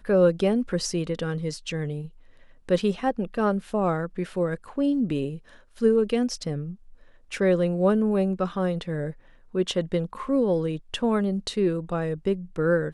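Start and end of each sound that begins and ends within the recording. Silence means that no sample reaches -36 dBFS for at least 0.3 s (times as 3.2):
2.69–5.38
5.79–6.74
7.32–9.12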